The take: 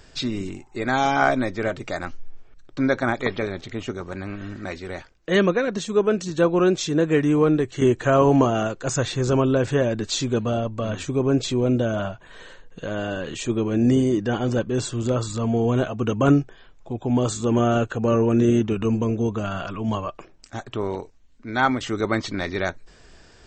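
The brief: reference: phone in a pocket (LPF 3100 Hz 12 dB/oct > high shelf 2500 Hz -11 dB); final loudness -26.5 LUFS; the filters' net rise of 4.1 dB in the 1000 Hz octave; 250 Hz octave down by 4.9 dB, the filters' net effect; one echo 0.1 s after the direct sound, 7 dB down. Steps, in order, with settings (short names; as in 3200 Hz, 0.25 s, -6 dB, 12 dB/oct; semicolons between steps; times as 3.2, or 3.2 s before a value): LPF 3100 Hz 12 dB/oct; bell 250 Hz -6.5 dB; bell 1000 Hz +8 dB; high shelf 2500 Hz -11 dB; echo 0.1 s -7 dB; gain -3.5 dB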